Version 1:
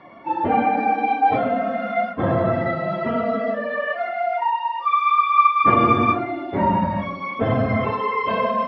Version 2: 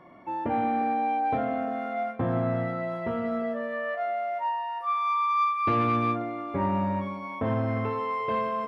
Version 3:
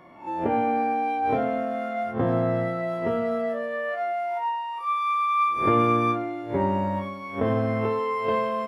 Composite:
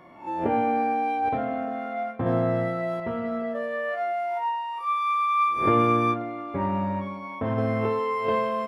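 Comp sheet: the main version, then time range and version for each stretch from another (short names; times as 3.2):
3
1.29–2.26 from 2
3–3.55 from 2
6.14–7.58 from 2
not used: 1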